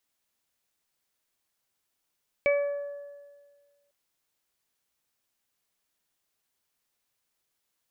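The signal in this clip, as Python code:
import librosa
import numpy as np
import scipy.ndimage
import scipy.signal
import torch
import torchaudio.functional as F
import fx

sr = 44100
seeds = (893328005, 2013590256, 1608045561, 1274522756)

y = fx.additive(sr, length_s=1.45, hz=572.0, level_db=-19.5, upper_db=(-19, -19.5, -4), decay_s=1.66, upper_decays_s=(1.18, 1.56, 0.44))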